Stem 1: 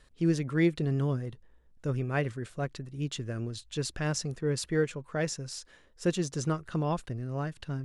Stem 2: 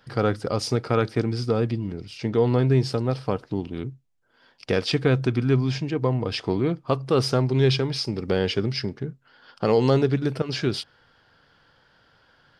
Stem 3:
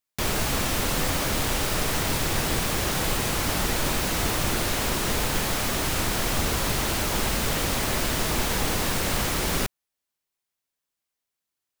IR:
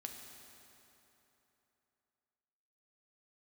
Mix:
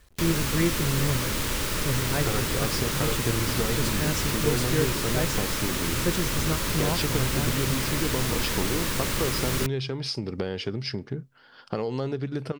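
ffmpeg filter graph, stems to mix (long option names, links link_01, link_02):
-filter_complex "[0:a]equalizer=frequency=65:width_type=o:width=1.6:gain=8.5,acrusher=bits=9:mix=0:aa=0.000001,volume=-0.5dB[link_01];[1:a]acompressor=threshold=-26dB:ratio=6,adelay=2100,volume=0dB[link_02];[2:a]equalizer=frequency=730:width_type=o:width=0.32:gain=-13,volume=-2dB[link_03];[link_01][link_02][link_03]amix=inputs=3:normalize=0"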